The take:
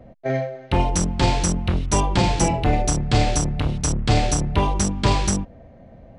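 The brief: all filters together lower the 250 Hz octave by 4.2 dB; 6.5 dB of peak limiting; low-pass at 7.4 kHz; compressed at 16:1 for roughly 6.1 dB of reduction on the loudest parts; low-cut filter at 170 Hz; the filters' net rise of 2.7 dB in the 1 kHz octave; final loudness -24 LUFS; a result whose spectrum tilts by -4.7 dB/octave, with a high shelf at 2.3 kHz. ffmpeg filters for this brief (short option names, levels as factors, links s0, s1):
-af "highpass=170,lowpass=7400,equalizer=f=250:t=o:g=-4,equalizer=f=1000:t=o:g=4.5,highshelf=f=2300:g=-5,acompressor=threshold=0.0794:ratio=16,volume=1.88,alimiter=limit=0.224:level=0:latency=1"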